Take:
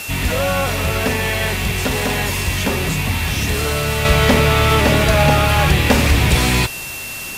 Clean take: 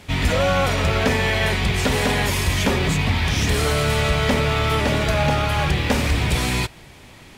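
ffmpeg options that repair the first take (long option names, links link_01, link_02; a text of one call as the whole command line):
ffmpeg -i in.wav -af "adeclick=threshold=4,bandreject=frequency=2700:width=30,afwtdn=0.032,asetnsamples=nb_out_samples=441:pad=0,asendcmd='4.05 volume volume -6dB',volume=0dB" out.wav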